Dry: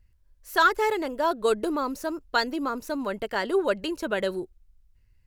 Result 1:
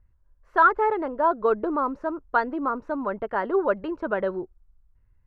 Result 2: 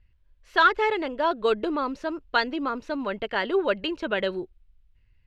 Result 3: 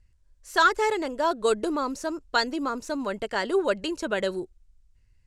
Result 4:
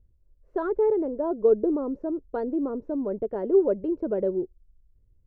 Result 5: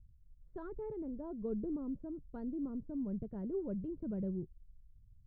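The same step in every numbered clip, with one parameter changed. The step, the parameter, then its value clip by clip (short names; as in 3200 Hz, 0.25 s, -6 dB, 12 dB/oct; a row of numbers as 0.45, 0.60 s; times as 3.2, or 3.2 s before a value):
synth low-pass, frequency: 1200, 3100, 7900, 450, 160 Hz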